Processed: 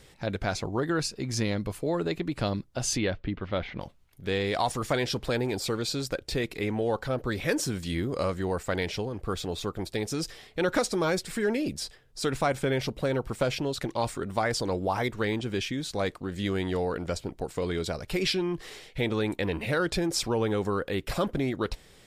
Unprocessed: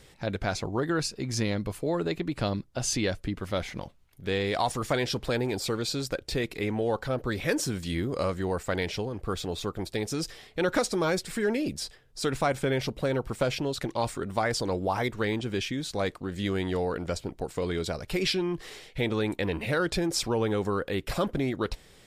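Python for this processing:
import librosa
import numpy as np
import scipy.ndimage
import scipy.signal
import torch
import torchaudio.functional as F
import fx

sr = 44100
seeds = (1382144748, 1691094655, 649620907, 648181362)

y = fx.lowpass(x, sr, hz=3700.0, slope=24, at=(2.98, 3.8))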